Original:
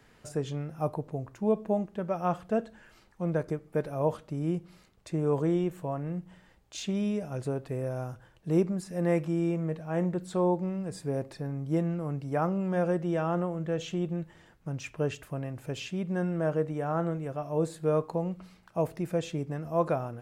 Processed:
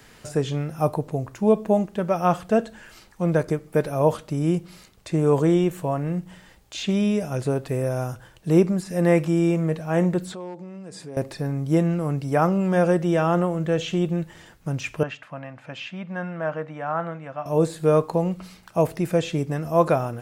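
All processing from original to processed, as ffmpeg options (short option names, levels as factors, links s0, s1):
-filter_complex "[0:a]asettb=1/sr,asplit=3[s0][s1][s2];[s0]atrim=end=10.324[s3];[s1]atrim=start=10.32:end=11.17,asetpts=PTS-STARTPTS,afade=t=in:d=0.004:c=qsin,afade=t=out:st=0.846:d=0.004:c=qsin,acompressor=threshold=0.00708:ratio=4:attack=3.2:release=140:knee=1:detection=peak,aeval=exprs='clip(val(0),-1,0.0126)':c=same,highpass=170,lowpass=7900[s4];[s2]atrim=start=11.166[s5];[s3][s4]acrossfade=d=0.004:c1=hsin:c2=qsin[s6];[s6][s5]acrossfade=d=0.004:c1=qsin:c2=hsin,asettb=1/sr,asplit=3[s7][s8][s9];[s7]atrim=end=15.034[s10];[s8]atrim=start=15.03:end=17.46,asetpts=PTS-STARTPTS,afade=t=in:d=0.004:c=qsin,afade=t=out:st=2.426:d=0.004:c=qsin,highpass=250,lowpass=2200,equalizer=f=370:t=o:w=1.1:g=-13,bandreject=f=420:w=6.1[s11];[s9]atrim=start=17.456[s12];[s10][s11]acrossfade=d=0.004:c1=hsin:c2=qsin[s13];[s13][s12]acrossfade=d=0.004:c1=qsin:c2=hsin,acrossover=split=3600[s14][s15];[s15]acompressor=threshold=0.00178:ratio=4:attack=1:release=60[s16];[s14][s16]amix=inputs=2:normalize=0,highshelf=f=3000:g=8.5,volume=2.51"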